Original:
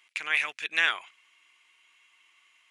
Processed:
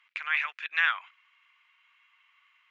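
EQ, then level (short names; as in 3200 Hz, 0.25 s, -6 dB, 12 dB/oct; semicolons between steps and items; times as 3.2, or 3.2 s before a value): resonant high-pass 1200 Hz, resonance Q 1.8; tape spacing loss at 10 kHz 40 dB; high shelf 2200 Hz +9.5 dB; 0.0 dB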